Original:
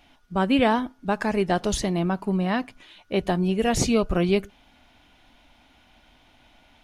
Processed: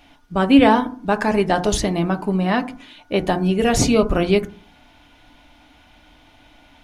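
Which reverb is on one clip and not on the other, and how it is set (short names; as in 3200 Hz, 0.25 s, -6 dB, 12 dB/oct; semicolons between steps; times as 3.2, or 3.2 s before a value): FDN reverb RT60 0.42 s, low-frequency decay 1.4×, high-frequency decay 0.25×, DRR 8 dB; gain +5 dB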